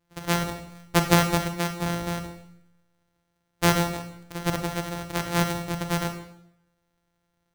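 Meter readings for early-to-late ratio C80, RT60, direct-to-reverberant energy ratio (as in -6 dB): 11.0 dB, 0.75 s, 6.0 dB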